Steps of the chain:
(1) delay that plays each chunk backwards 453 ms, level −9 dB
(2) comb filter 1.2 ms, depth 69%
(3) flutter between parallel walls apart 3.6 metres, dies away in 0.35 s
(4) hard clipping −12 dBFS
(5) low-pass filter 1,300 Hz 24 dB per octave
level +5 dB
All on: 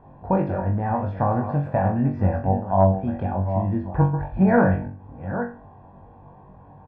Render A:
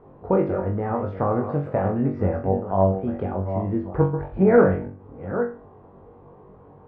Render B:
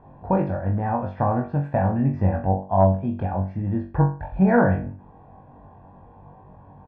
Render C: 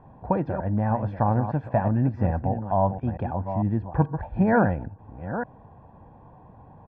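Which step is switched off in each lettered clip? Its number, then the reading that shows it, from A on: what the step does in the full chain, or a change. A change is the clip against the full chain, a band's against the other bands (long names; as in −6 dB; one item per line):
2, 500 Hz band +6.5 dB
1, change in momentary loudness spread −3 LU
3, change in integrated loudness −3.0 LU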